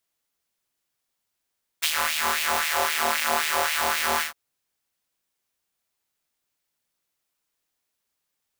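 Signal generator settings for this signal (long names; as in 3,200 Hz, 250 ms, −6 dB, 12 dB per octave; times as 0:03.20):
subtractive patch with filter wobble D#2, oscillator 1 triangle, oscillator 2 square, interval 0 semitones, oscillator 2 level −12 dB, noise −23.5 dB, filter highpass, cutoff 980 Hz, Q 2, filter envelope 1 octave, filter decay 0.83 s, attack 18 ms, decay 0.07 s, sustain −5.5 dB, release 0.12 s, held 2.39 s, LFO 3.8 Hz, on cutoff 0.8 octaves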